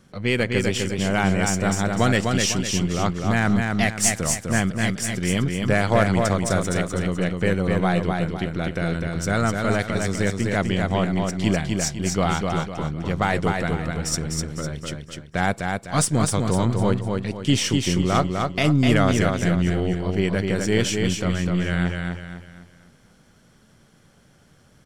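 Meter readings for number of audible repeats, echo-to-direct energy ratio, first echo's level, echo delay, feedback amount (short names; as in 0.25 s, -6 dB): 4, -3.5 dB, -4.0 dB, 0.252 s, 38%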